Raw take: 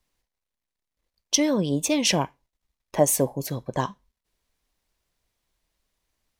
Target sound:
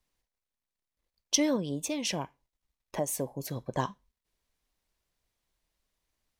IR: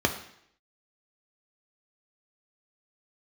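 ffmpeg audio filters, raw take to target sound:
-filter_complex "[0:a]asettb=1/sr,asplit=3[a][b][c];[a]atrim=end=1.564[d];[b]atrim=start=1.56:end=3.56,asetpts=PTS-STARTPTS,afade=t=in:d=0.004:c=qsin,afade=t=out:st=1.996:d=0.004:c=qsin,acompressor=threshold=-29dB:ratio=2[e];[c]atrim=start=3.556[f];[d][e]acrossfade=d=0.004:c1=hsin:c2=qsin[g];[g][f]acrossfade=d=0.004:c1=qsin:c2=hsin,volume=-4.5dB"

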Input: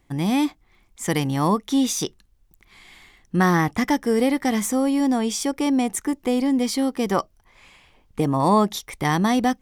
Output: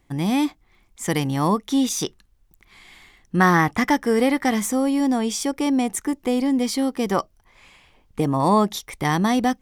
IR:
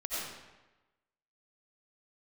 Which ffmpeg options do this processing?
-filter_complex "[0:a]asettb=1/sr,asplit=3[a][b][c];[a]atrim=end=1.894[d];[b]atrim=start=1.89:end=4.54,asetpts=PTS-STARTPTS,afade=t=in:d=0.004:c=qsin,afade=t=out:st=2.646:d=0.004:c=qsin,adynamicequalizer=threshold=0.0178:dfrequency=1400:dqfactor=0.72:tfrequency=1400:tqfactor=0.72:attack=5:release=100:ratio=0.375:range=2.5:mode=boostabove:tftype=bell[e];[c]atrim=start=4.536[f];[d][e]acrossfade=d=0.004:c1=hsin:c2=qsin[g];[g][f]acrossfade=d=0.004:c1=qsin:c2=hsin"

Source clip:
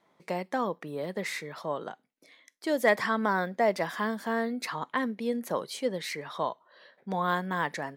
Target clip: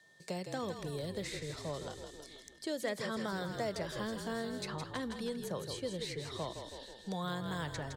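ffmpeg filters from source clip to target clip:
-filter_complex "[0:a]equalizer=f=125:t=o:w=1:g=6,equalizer=f=250:t=o:w=1:g=-9,equalizer=f=1k:t=o:w=1:g=-10,equalizer=f=2k:t=o:w=1:g=-11,equalizer=f=4k:t=o:w=1:g=8,equalizer=f=8k:t=o:w=1:g=12,aeval=exprs='val(0)+0.000631*sin(2*PI*1800*n/s)':c=same,asplit=8[a][b][c][d][e][f][g][h];[b]adelay=161,afreqshift=-42,volume=-9dB[i];[c]adelay=322,afreqshift=-84,volume=-14dB[j];[d]adelay=483,afreqshift=-126,volume=-19.1dB[k];[e]adelay=644,afreqshift=-168,volume=-24.1dB[l];[f]adelay=805,afreqshift=-210,volume=-29.1dB[m];[g]adelay=966,afreqshift=-252,volume=-34.2dB[n];[h]adelay=1127,afreqshift=-294,volume=-39.2dB[o];[a][i][j][k][l][m][n][o]amix=inputs=8:normalize=0,acrossover=split=450|920|2400[p][q][r][s];[p]acompressor=threshold=-39dB:ratio=4[t];[q]acompressor=threshold=-51dB:ratio=4[u];[r]acompressor=threshold=-42dB:ratio=4[v];[s]acompressor=threshold=-53dB:ratio=4[w];[t][u][v][w]amix=inputs=4:normalize=0,volume=1.5dB"

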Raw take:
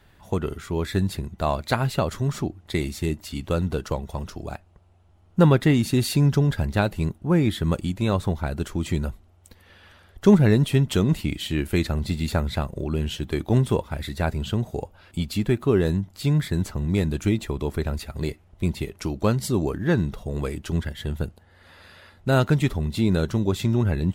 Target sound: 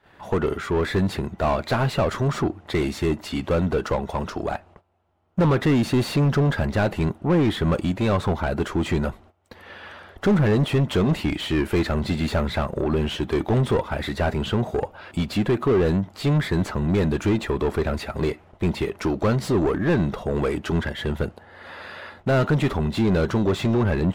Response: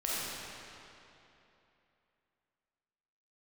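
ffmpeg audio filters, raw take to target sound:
-filter_complex "[0:a]volume=12.5dB,asoftclip=hard,volume=-12.5dB,asplit=2[a][b];[b]highpass=f=720:p=1,volume=24dB,asoftclip=type=tanh:threshold=-12dB[c];[a][c]amix=inputs=2:normalize=0,lowpass=f=1k:p=1,volume=-6dB,agate=range=-16dB:threshold=-47dB:ratio=16:detection=peak"

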